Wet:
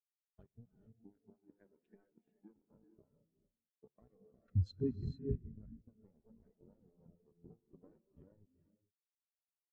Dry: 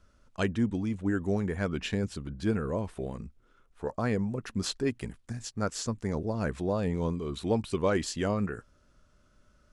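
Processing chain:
sub-octave generator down 1 octave, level +2 dB
0:00.98–0:02.71: Butterworth high-pass 160 Hz 48 dB per octave
downward compressor 12 to 1, threshold −35 dBFS, peak gain reduction 17 dB
0:04.48–0:05.36: leveller curve on the samples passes 3
dead-zone distortion −36 dBFS
reverb whose tail is shaped and stops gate 480 ms rising, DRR 1.5 dB
every bin expanded away from the loudest bin 2.5 to 1
level +1.5 dB

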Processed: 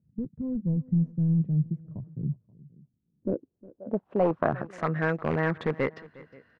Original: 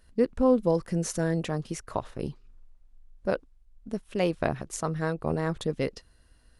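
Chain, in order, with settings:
high-pass filter 110 Hz 24 dB per octave
slap from a distant wall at 91 metres, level −25 dB
in parallel at −7.5 dB: wrap-around overflow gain 20.5 dB
on the sum: low-pass filter sweep 150 Hz → 1,900 Hz, 0:02.66–0:04.84
on a send: single-tap delay 358 ms −21 dB
on the sum: level −1 dB

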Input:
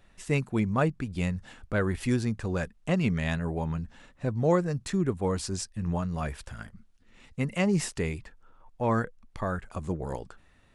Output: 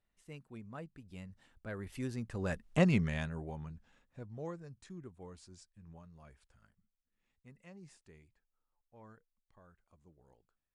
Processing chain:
source passing by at 0:02.77, 14 m/s, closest 2.5 metres

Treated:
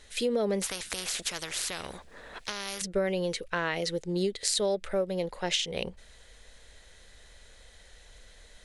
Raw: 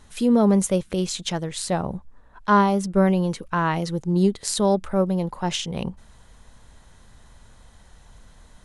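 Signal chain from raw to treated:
graphic EQ with 10 bands 125 Hz −10 dB, 250 Hz −6 dB, 500 Hz +9 dB, 1,000 Hz −9 dB, 2,000 Hz +9 dB, 4,000 Hz +7 dB, 8,000 Hz +4 dB
downward compressor, threshold −20 dBFS, peak gain reduction 7 dB
0:00.62–0:02.82: every bin compressed towards the loudest bin 4 to 1
level −4.5 dB

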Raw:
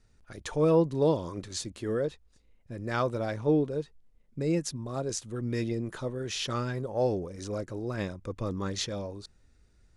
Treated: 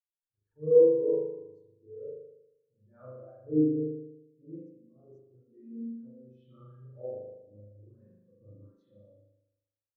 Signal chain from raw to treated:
spring reverb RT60 2.2 s, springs 39 ms, chirp 30 ms, DRR −8.5 dB
every bin expanded away from the loudest bin 2.5 to 1
level −5.5 dB

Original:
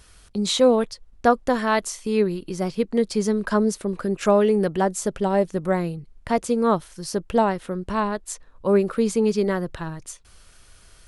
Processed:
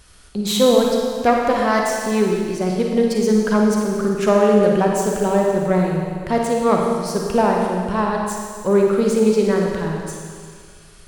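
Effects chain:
phase distortion by the signal itself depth 0.1 ms
four-comb reverb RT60 2 s, DRR −0.5 dB
level +1.5 dB

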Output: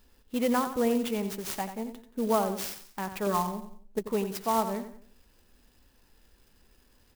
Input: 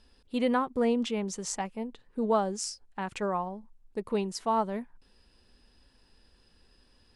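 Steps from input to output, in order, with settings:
0:03.26–0:03.99: comb filter 4.7 ms, depth 83%
on a send: repeating echo 89 ms, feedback 36%, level −10 dB
on the sum: converter with an unsteady clock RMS 0.042 ms

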